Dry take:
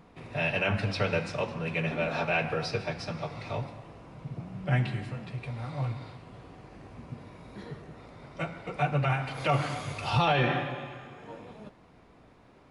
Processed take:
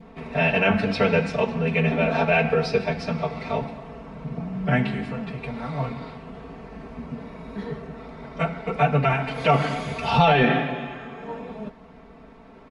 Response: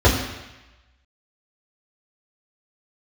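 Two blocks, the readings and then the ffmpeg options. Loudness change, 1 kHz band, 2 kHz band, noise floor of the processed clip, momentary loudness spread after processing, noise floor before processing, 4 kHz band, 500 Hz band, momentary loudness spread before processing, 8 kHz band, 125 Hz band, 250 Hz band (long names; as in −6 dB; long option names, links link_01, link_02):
+7.5 dB, +8.0 dB, +7.0 dB, −47 dBFS, 19 LU, −57 dBFS, +5.0 dB, +9.0 dB, 20 LU, can't be measured, +4.5 dB, +10.5 dB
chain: -af "lowpass=frequency=2300:poles=1,aecho=1:1:4.5:0.95,adynamicequalizer=threshold=0.00562:dfrequency=1200:dqfactor=1.6:tfrequency=1200:tqfactor=1.6:attack=5:release=100:ratio=0.375:range=2.5:mode=cutabove:tftype=bell,volume=7.5dB"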